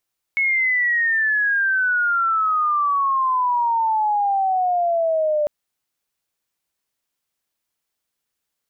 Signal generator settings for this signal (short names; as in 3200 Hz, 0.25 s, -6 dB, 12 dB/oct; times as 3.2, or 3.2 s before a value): chirp logarithmic 2200 Hz -> 590 Hz -16 dBFS -> -16.5 dBFS 5.10 s